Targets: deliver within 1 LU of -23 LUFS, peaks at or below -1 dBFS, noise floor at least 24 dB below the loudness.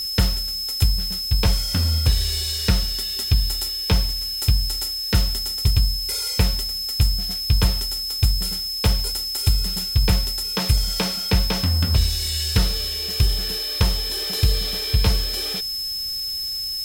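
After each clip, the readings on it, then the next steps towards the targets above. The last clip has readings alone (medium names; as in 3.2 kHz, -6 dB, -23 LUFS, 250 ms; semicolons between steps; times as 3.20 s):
steady tone 5.2 kHz; tone level -25 dBFS; noise floor -28 dBFS; noise floor target -46 dBFS; loudness -21.5 LUFS; peak level -3.5 dBFS; loudness target -23.0 LUFS
-> band-stop 5.2 kHz, Q 30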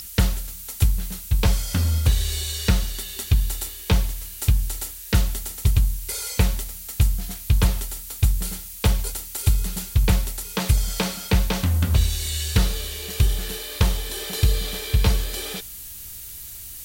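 steady tone not found; noise floor -38 dBFS; noise floor target -48 dBFS
-> noise print and reduce 10 dB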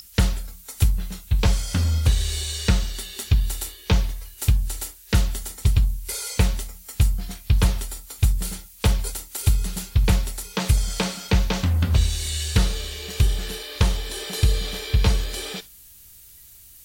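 noise floor -48 dBFS; loudness -24.0 LUFS; peak level -4.5 dBFS; loudness target -23.0 LUFS
-> trim +1 dB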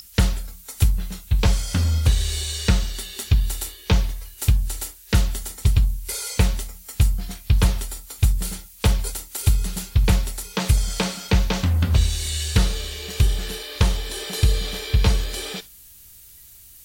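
loudness -23.0 LUFS; peak level -3.5 dBFS; noise floor -47 dBFS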